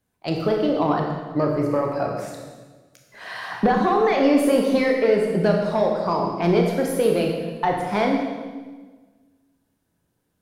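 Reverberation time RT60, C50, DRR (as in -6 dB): 1.4 s, 3.0 dB, 0.5 dB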